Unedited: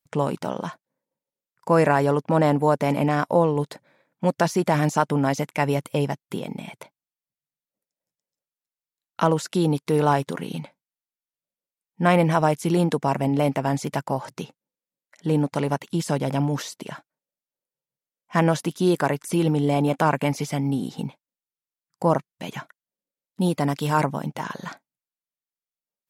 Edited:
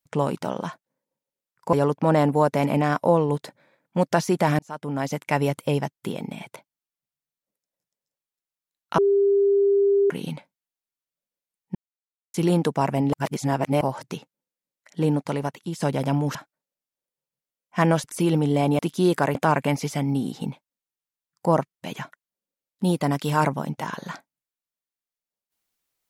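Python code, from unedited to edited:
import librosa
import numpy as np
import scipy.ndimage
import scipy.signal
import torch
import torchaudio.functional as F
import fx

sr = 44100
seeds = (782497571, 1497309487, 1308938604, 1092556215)

y = fx.edit(x, sr, fx.cut(start_s=1.73, length_s=0.27),
    fx.fade_in_span(start_s=4.86, length_s=0.71),
    fx.bleep(start_s=9.25, length_s=1.12, hz=399.0, db=-15.5),
    fx.silence(start_s=12.02, length_s=0.59),
    fx.reverse_span(start_s=13.4, length_s=0.68),
    fx.fade_out_to(start_s=15.27, length_s=0.8, floor_db=-7.5),
    fx.cut(start_s=16.62, length_s=0.3),
    fx.move(start_s=18.61, length_s=0.56, to_s=19.92), tone=tone)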